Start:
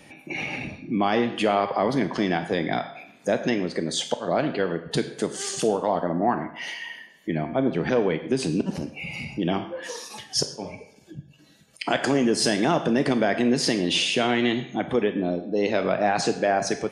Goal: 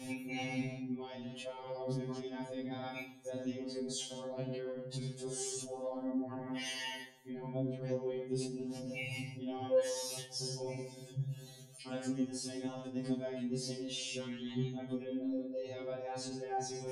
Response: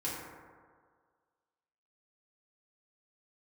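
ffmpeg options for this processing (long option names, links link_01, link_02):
-filter_complex "[0:a]equalizer=frequency=1600:width_type=o:width=2.3:gain=-14.5,areverse,acompressor=threshold=-40dB:ratio=10,areverse,alimiter=level_in=16dB:limit=-24dB:level=0:latency=1:release=24,volume=-16dB,flanger=delay=19:depth=2.3:speed=0.32,asplit=2[link_01][link_02];[1:a]atrim=start_sample=2205[link_03];[link_02][link_03]afir=irnorm=-1:irlink=0,volume=-19.5dB[link_04];[link_01][link_04]amix=inputs=2:normalize=0,afftfilt=real='re*2.45*eq(mod(b,6),0)':imag='im*2.45*eq(mod(b,6),0)':win_size=2048:overlap=0.75,volume=13.5dB"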